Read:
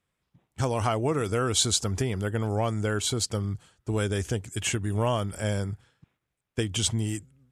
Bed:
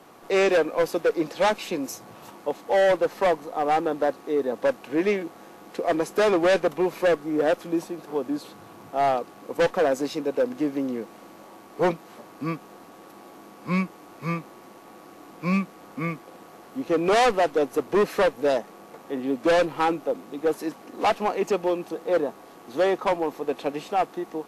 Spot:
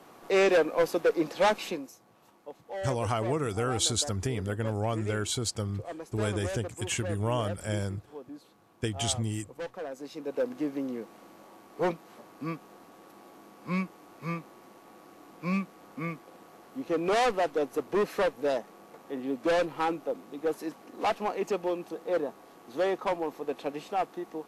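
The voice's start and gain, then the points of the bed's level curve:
2.25 s, −3.5 dB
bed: 0:01.69 −2.5 dB
0:01.91 −16.5 dB
0:09.93 −16.5 dB
0:10.40 −6 dB

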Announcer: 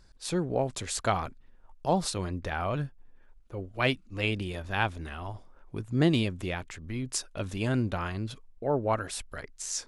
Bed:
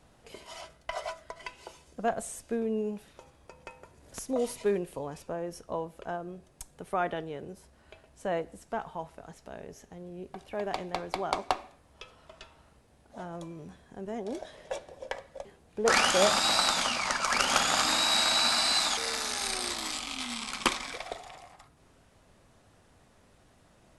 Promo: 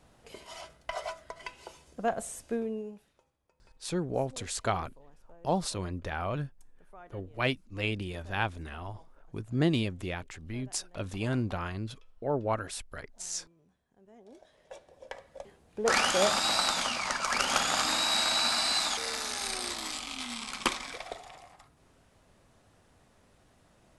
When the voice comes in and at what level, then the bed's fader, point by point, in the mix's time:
3.60 s, −2.5 dB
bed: 0:02.56 −0.5 dB
0:03.39 −21.5 dB
0:13.98 −21.5 dB
0:15.44 −2 dB

